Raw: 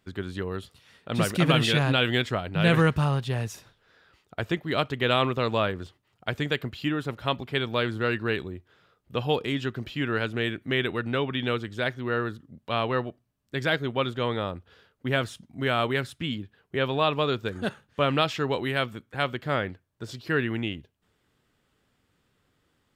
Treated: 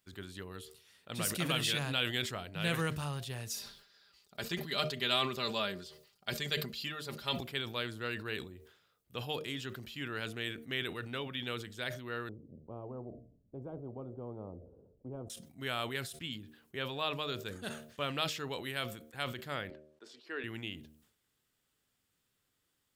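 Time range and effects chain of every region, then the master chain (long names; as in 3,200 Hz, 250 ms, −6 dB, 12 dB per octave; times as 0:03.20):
0:03.50–0:07.38: parametric band 4,600 Hz +10 dB 0.54 octaves + comb filter 5 ms, depth 63%
0:12.29–0:15.30: inverse Chebyshev low-pass filter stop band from 1,700 Hz, stop band 60 dB + every bin compressed towards the loudest bin 2 to 1
0:19.70–0:20.44: high-pass filter 300 Hz 24 dB per octave + head-to-tape spacing loss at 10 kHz 20 dB
whole clip: first-order pre-emphasis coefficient 0.8; hum removal 76.37 Hz, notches 9; level that may fall only so fast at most 85 dB per second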